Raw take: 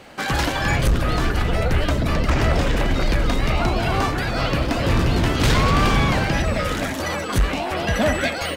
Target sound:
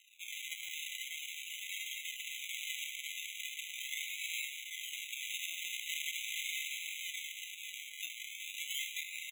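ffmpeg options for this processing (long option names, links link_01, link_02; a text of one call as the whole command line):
ffmpeg -i in.wav -af "equalizer=frequency=86:width_type=o:width=0.52:gain=14.5,acrusher=samples=35:mix=1:aa=0.000001:lfo=1:lforange=21:lforate=0.44,asetrate=40517,aresample=44100,afftfilt=real='re*eq(mod(floor(b*sr/1024/2000),2),1)':imag='im*eq(mod(floor(b*sr/1024/2000),2),1)':win_size=1024:overlap=0.75,volume=-7.5dB" out.wav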